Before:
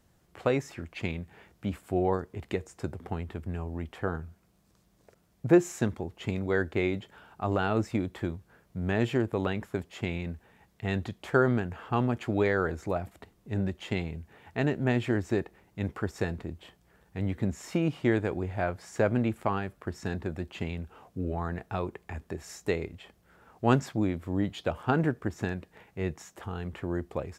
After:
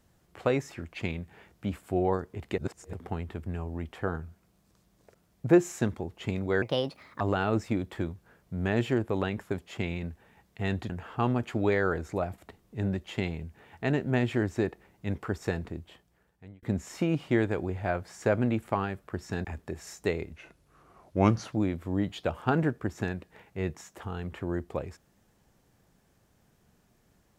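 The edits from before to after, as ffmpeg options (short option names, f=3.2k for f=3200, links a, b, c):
-filter_complex "[0:a]asplit=10[a][b][c][d][e][f][g][h][i][j];[a]atrim=end=2.582[k];[b]atrim=start=2.578:end=2.932,asetpts=PTS-STARTPTS,areverse[l];[c]atrim=start=2.928:end=6.624[m];[d]atrim=start=6.62:end=7.44,asetpts=PTS-STARTPTS,asetrate=61740,aresample=44100[n];[e]atrim=start=7.436:end=11.132[o];[f]atrim=start=11.628:end=17.36,asetpts=PTS-STARTPTS,afade=t=out:st=4.792:d=0.94[p];[g]atrim=start=17.36:end=20.182,asetpts=PTS-STARTPTS,afade=t=in:d=0.004:c=hsin[q];[h]atrim=start=22.068:end=22.954[r];[i]atrim=start=22.95:end=23.93,asetpts=PTS-STARTPTS,asetrate=36162,aresample=44100[s];[j]atrim=start=23.926[t];[k][l]acrossfade=d=0.004:c1=hsin:c2=hsin[u];[u][m]acrossfade=d=0.004:c1=hsin:c2=hsin[v];[v][n]acrossfade=d=0.004:c1=hsin:c2=hsin[w];[w][o]acrossfade=d=0.004:c1=hsin:c2=hsin[x];[p][q]concat=n=2:v=0:a=1[y];[x][y]acrossfade=d=0.004:c1=hsin:c2=hsin[z];[z][r]acrossfade=d=0.004:c1=hsin:c2=hsin[aa];[aa][s]acrossfade=d=0.004:c1=hsin:c2=hsin[ab];[ab][t]acrossfade=d=0.004:c1=hsin:c2=hsin"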